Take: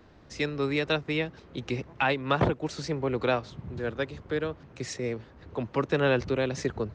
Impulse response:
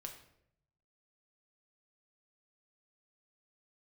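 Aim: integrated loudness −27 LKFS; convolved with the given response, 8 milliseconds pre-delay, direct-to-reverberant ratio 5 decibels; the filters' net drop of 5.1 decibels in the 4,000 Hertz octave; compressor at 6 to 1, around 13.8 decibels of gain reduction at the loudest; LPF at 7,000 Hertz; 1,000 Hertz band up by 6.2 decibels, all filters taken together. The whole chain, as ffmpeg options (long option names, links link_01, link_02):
-filter_complex "[0:a]lowpass=7000,equalizer=frequency=1000:width_type=o:gain=8.5,equalizer=frequency=4000:width_type=o:gain=-6.5,acompressor=threshold=-32dB:ratio=6,asplit=2[link_01][link_02];[1:a]atrim=start_sample=2205,adelay=8[link_03];[link_02][link_03]afir=irnorm=-1:irlink=0,volume=-1dB[link_04];[link_01][link_04]amix=inputs=2:normalize=0,volume=9dB"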